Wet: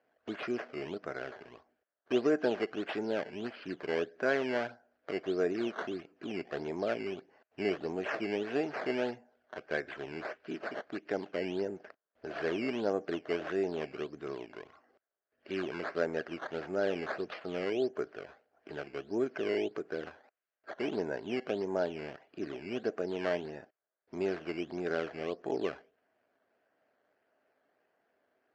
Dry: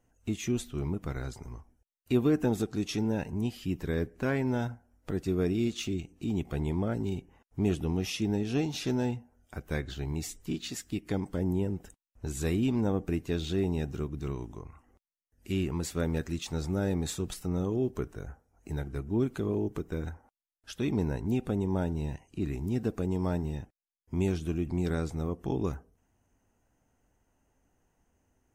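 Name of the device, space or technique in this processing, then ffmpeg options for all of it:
circuit-bent sampling toy: -af "acrusher=samples=12:mix=1:aa=0.000001:lfo=1:lforange=12:lforate=1.6,highpass=400,equalizer=f=410:t=q:w=4:g=4,equalizer=f=630:t=q:w=4:g=9,equalizer=f=920:t=q:w=4:g=-5,equalizer=f=1600:t=q:w=4:g=7,equalizer=f=3700:t=q:w=4:g=-9,lowpass=f=4400:w=0.5412,lowpass=f=4400:w=1.3066"

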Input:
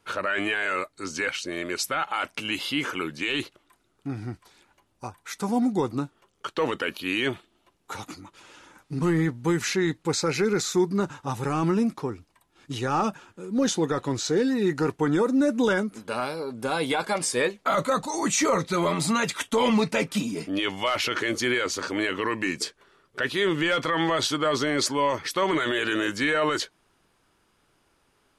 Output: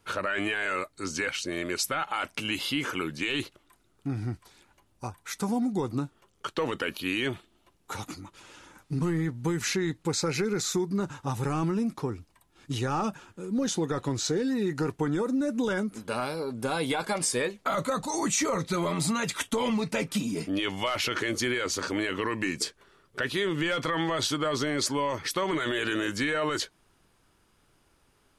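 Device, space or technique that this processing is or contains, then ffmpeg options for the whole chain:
ASMR close-microphone chain: -af "lowshelf=f=160:g=7.5,acompressor=threshold=0.0708:ratio=6,highshelf=f=6500:g=4.5,volume=0.841"

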